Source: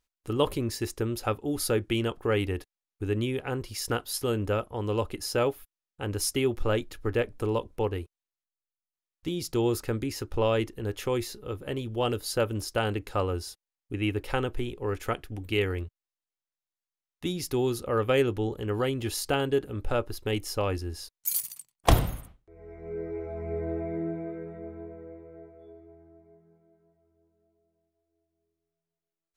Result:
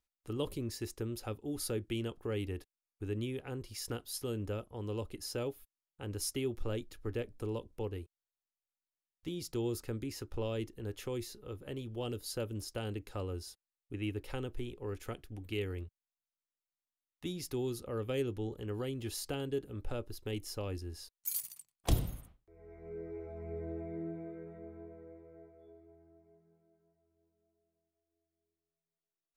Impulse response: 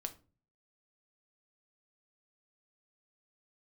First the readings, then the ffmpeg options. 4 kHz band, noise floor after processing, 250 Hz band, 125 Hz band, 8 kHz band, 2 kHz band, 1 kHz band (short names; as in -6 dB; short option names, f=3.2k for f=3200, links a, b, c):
-9.5 dB, under -85 dBFS, -8.5 dB, -8.0 dB, -8.0 dB, -13.5 dB, -16.0 dB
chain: -filter_complex "[0:a]acrossover=split=480|3000[a][b][c];[b]acompressor=threshold=-45dB:ratio=2[d];[a][d][c]amix=inputs=3:normalize=0,volume=-8dB"